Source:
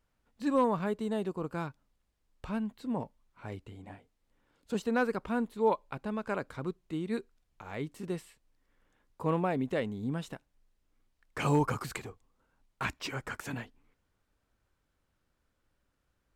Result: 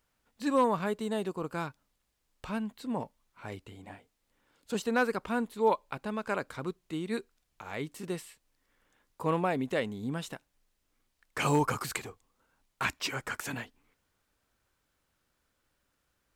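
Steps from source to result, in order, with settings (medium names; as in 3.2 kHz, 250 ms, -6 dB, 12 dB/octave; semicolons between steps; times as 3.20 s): tilt EQ +1.5 dB/octave; trim +2.5 dB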